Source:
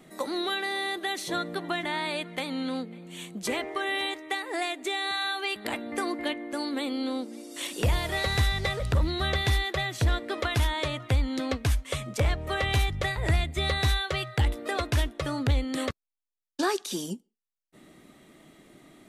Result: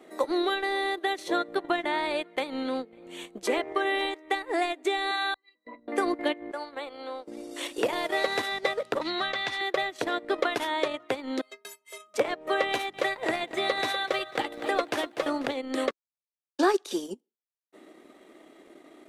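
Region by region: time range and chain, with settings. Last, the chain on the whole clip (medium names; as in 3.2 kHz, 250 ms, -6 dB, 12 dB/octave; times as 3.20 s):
5.34–5.88 s: pitch-class resonator B, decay 0.17 s + three bands expanded up and down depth 100%
6.51–7.27 s: high-pass 700 Hz + treble shelf 2.9 kHz -10.5 dB
9.01–9.61 s: low-pass 6.8 kHz + peaking EQ 410 Hz -13 dB 1.3 oct + three bands compressed up and down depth 100%
11.41–12.14 s: RIAA curve recording + inharmonic resonator 190 Hz, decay 0.44 s, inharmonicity 0.03
12.69–15.49 s: band-stop 420 Hz, Q 9.6 + bit-crushed delay 246 ms, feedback 55%, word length 9-bit, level -10 dB
whole clip: high-pass 330 Hz 24 dB/octave; transient shaper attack +1 dB, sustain -11 dB; tilt EQ -2.5 dB/octave; trim +3 dB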